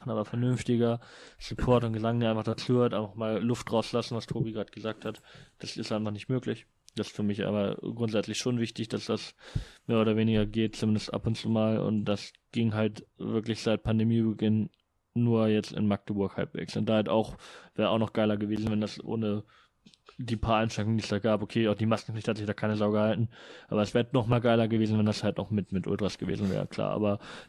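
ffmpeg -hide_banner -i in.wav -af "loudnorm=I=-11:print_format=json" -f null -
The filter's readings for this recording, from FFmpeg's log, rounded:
"input_i" : "-29.7",
"input_tp" : "-10.9",
"input_lra" : "3.7",
"input_thresh" : "-39.9",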